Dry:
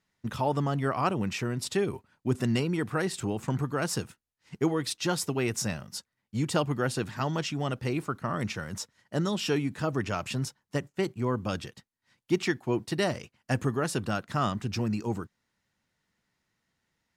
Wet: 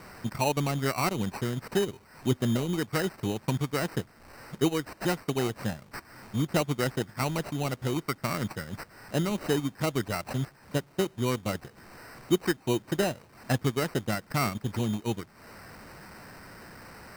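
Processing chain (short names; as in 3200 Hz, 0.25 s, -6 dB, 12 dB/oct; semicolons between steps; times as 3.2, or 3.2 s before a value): delta modulation 64 kbps, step -41 dBFS; transient shaper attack +2 dB, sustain -10 dB; sample-and-hold 13×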